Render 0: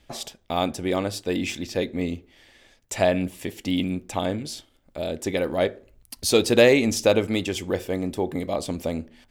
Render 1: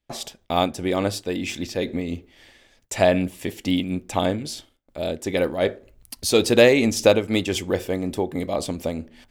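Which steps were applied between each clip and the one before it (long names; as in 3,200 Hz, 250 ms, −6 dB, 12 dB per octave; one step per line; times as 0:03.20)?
noise gate with hold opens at −49 dBFS
amplitude modulation by smooth noise, depth 65%
level +5.5 dB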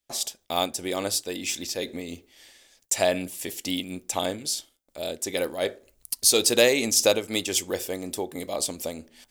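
bass and treble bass −8 dB, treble +14 dB
level −5 dB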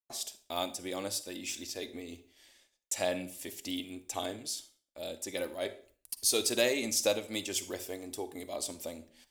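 noise gate −55 dBFS, range −20 dB
flanger 0.49 Hz, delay 2.6 ms, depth 1.1 ms, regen −48%
convolution reverb RT60 0.45 s, pre-delay 38 ms, DRR 13.5 dB
level −5 dB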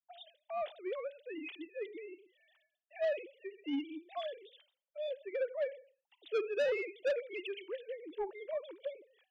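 three sine waves on the formant tracks
soft clipping −27.5 dBFS, distortion −9 dB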